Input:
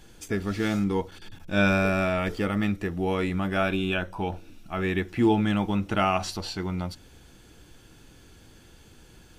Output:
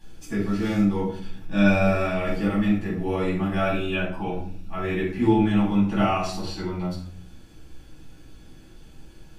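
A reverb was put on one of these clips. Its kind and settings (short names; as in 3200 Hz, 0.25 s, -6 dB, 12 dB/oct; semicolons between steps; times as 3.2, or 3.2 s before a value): shoebox room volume 620 m³, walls furnished, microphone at 8.9 m; gain -11.5 dB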